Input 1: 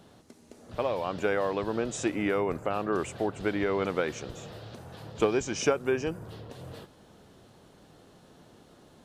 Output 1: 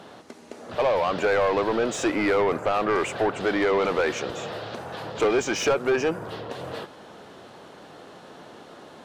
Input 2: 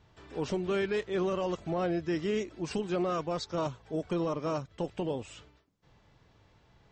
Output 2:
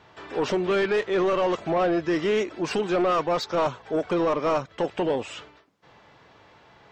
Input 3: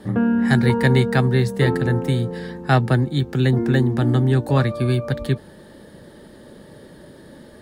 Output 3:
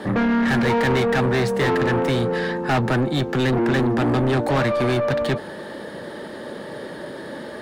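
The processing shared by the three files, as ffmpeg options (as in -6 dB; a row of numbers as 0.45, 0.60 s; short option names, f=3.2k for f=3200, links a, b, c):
-filter_complex "[0:a]asplit=2[a][b];[b]highpass=f=720:p=1,volume=31dB,asoftclip=type=tanh:threshold=-3.5dB[c];[a][c]amix=inputs=2:normalize=0,lowpass=f=2k:p=1,volume=-6dB,volume=-8dB"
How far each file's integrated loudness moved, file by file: +5.0, +8.0, -1.0 LU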